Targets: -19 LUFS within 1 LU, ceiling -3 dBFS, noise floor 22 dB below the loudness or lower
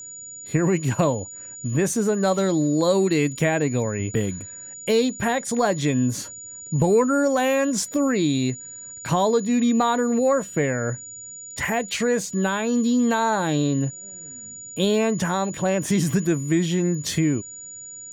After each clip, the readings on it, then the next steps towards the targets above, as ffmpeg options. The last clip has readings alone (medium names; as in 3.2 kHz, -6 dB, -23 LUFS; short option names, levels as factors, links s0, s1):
steady tone 6.9 kHz; tone level -36 dBFS; loudness -22.5 LUFS; peak level -9.0 dBFS; loudness target -19.0 LUFS
-> -af "bandreject=f=6900:w=30"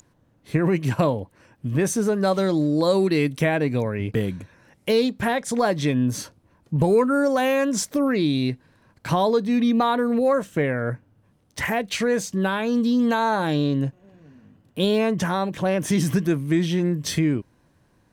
steady tone not found; loudness -22.5 LUFS; peak level -9.0 dBFS; loudness target -19.0 LUFS
-> -af "volume=1.5"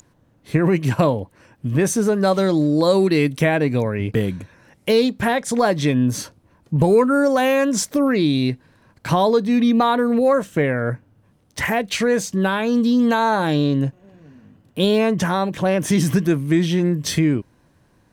loudness -19.0 LUFS; peak level -5.5 dBFS; noise floor -59 dBFS